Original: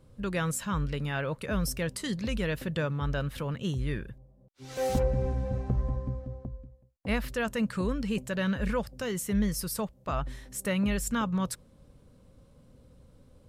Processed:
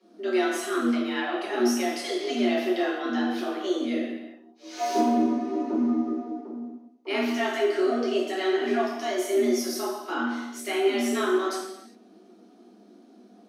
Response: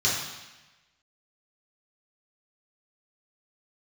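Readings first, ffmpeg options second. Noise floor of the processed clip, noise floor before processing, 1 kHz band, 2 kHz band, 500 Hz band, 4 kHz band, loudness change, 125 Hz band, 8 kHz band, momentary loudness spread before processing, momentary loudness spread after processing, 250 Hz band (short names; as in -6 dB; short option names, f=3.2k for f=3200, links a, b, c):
-54 dBFS, -60 dBFS, +8.0 dB, +4.5 dB, +8.5 dB, +6.5 dB, +5.0 dB, under -20 dB, +0.5 dB, 9 LU, 10 LU, +6.0 dB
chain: -filter_complex "[0:a]afreqshift=190,flanger=delay=5.2:depth=8.7:regen=42:speed=0.49:shape=triangular[a];[1:a]atrim=start_sample=2205,afade=t=out:st=0.42:d=0.01,atrim=end_sample=18963,asetrate=39690,aresample=44100[b];[a][b]afir=irnorm=-1:irlink=0,volume=-6dB"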